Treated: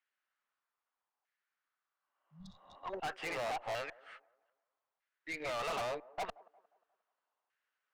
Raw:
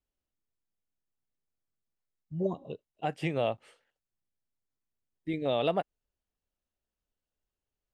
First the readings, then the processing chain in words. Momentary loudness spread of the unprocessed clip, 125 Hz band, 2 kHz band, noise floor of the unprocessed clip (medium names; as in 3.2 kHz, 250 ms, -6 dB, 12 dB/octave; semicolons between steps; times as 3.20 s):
15 LU, -17.0 dB, +2.0 dB, under -85 dBFS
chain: chunks repeated in reverse 300 ms, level -1.5 dB; frequency weighting A; LFO band-pass saw down 0.8 Hz 870–1800 Hz; valve stage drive 49 dB, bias 0.35; spectral replace 2.01–2.77 s, 230–3300 Hz both; feedback echo behind a band-pass 178 ms, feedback 40%, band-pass 590 Hz, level -20 dB; trim +14 dB